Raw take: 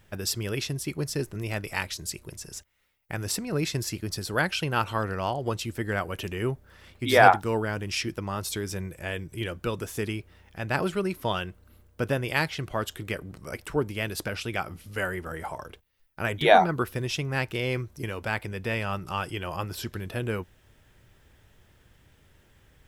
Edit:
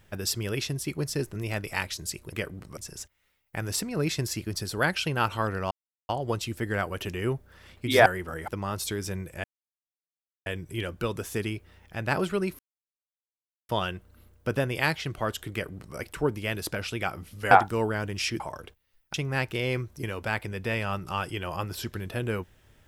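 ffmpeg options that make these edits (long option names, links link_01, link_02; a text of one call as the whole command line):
ffmpeg -i in.wav -filter_complex "[0:a]asplit=11[link_01][link_02][link_03][link_04][link_05][link_06][link_07][link_08][link_09][link_10][link_11];[link_01]atrim=end=2.332[link_12];[link_02]atrim=start=13.048:end=13.492[link_13];[link_03]atrim=start=2.328:end=5.27,asetpts=PTS-STARTPTS,afade=type=out:start_time=2.938:duration=0.004:curve=hsin,apad=pad_dur=0.38[link_14];[link_04]atrim=start=5.27:end=7.242,asetpts=PTS-STARTPTS,afade=type=in:duration=0.004:curve=hsin[link_15];[link_05]atrim=start=15.038:end=15.462[link_16];[link_06]atrim=start=8.128:end=9.09,asetpts=PTS-STARTPTS,afade=type=out:start_time=0.958:duration=0.004:curve=hsin,apad=pad_dur=1.02[link_17];[link_07]atrim=start=9.09:end=11.22,asetpts=PTS-STARTPTS,afade=type=in:duration=0.004:curve=hsin,afade=type=out:start_time=2.126:duration=0.004:curve=hsin,apad=pad_dur=1.1[link_18];[link_08]atrim=start=11.22:end=15.042,asetpts=PTS-STARTPTS,afade=type=in:duration=0.004:curve=hsin[link_19];[link_09]atrim=start=7.238:end=8.132[link_20];[link_10]atrim=start=15.458:end=16.202[link_21];[link_11]atrim=start=17.138[link_22];[link_12][link_13]acrossfade=duration=0.004:curve1=hsin:curve2=hsin[link_23];[link_14][link_15]concat=n=2:v=0:a=1[link_24];[link_23][link_24]acrossfade=duration=0.004:curve1=hsin:curve2=hsin[link_25];[link_25][link_16]acrossfade=duration=0.004:curve1=hsin:curve2=hsin[link_26];[link_17][link_18][link_19]concat=n=3:v=0:a=1[link_27];[link_26][link_27]acrossfade=duration=0.004:curve1=hsin:curve2=hsin[link_28];[link_28][link_20]acrossfade=duration=0.004:curve1=hsin:curve2=hsin[link_29];[link_29][link_21]acrossfade=duration=0.004:curve1=hsin:curve2=hsin[link_30];[link_30][link_22]acrossfade=duration=0.004:curve1=hsin:curve2=hsin" out.wav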